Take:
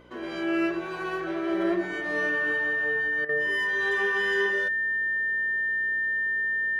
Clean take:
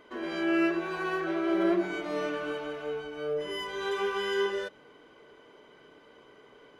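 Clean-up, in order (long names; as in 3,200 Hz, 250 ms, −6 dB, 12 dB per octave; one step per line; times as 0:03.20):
hum removal 60.8 Hz, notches 9
notch filter 1,800 Hz, Q 30
repair the gap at 0:03.25, 39 ms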